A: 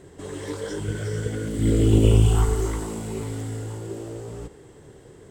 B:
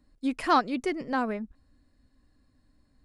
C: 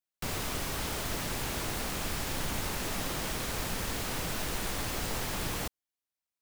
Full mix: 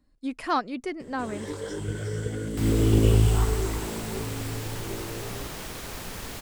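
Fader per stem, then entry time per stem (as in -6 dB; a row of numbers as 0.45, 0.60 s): -3.0, -3.0, -3.0 dB; 1.00, 0.00, 2.35 s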